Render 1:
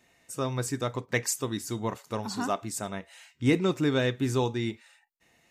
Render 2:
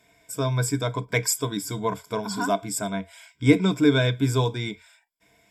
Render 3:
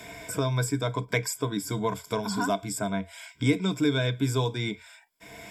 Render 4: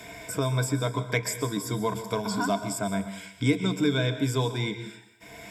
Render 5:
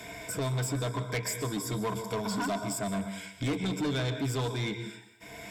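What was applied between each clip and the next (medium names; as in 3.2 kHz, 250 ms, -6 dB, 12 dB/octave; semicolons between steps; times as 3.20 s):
rippled EQ curve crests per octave 1.7, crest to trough 15 dB; trim +2 dB
three bands compressed up and down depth 70%; trim -3 dB
plate-style reverb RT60 0.77 s, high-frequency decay 1×, pre-delay 110 ms, DRR 9.5 dB
saturation -26.5 dBFS, distortion -9 dB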